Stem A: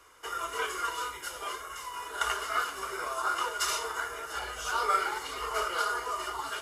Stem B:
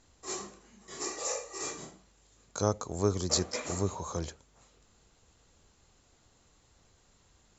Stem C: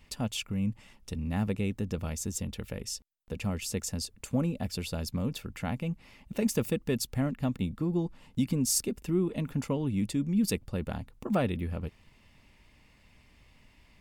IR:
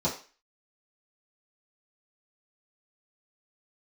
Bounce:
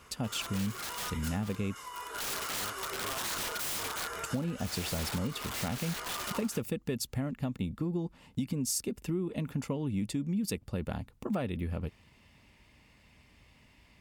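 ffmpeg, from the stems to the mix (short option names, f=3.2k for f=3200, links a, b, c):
-filter_complex "[0:a]aeval=exprs='(mod(29.9*val(0)+1,2)-1)/29.9':c=same,volume=-0.5dB[a];[1:a]volume=-20dB[b];[2:a]highpass=47,volume=0.5dB,asplit=3[c][d][e];[c]atrim=end=1.75,asetpts=PTS-STARTPTS,afade=t=out:st=1.746:d=0.004:c=hsin[f];[d]atrim=start=1.75:end=4.08,asetpts=PTS-STARTPTS,volume=0[g];[e]atrim=start=4.08,asetpts=PTS-STARTPTS,afade=t=in:d=0.004:c=hsin[h];[f][g][h]concat=n=3:v=0:a=1,asplit=2[i][j];[j]apad=whole_len=291896[k];[a][k]sidechaincompress=threshold=-29dB:ratio=8:attack=7.9:release=1100[l];[l][b][i]amix=inputs=3:normalize=0,acompressor=threshold=-29dB:ratio=6"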